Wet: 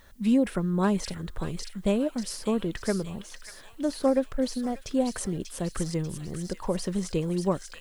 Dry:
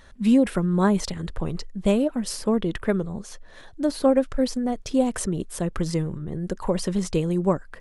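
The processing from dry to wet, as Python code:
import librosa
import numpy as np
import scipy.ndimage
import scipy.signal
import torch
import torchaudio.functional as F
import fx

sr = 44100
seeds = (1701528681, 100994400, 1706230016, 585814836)

y = fx.echo_wet_highpass(x, sr, ms=590, feedback_pct=50, hz=2200.0, wet_db=-4.0)
y = fx.dmg_noise_colour(y, sr, seeds[0], colour='blue', level_db=-63.0)
y = y * 10.0 ** (-4.5 / 20.0)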